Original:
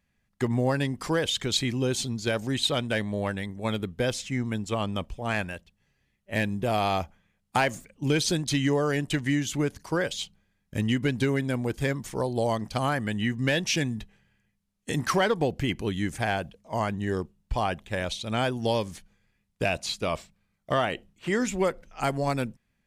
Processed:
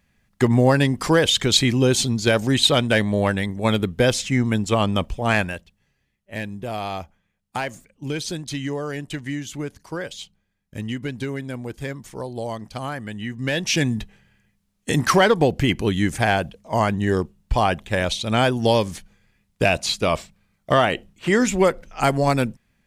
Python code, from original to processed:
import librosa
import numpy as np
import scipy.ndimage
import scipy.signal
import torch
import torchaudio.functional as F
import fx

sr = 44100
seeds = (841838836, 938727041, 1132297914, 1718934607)

y = fx.gain(x, sr, db=fx.line((5.33, 9.0), (6.33, -3.0), (13.27, -3.0), (13.89, 8.0)))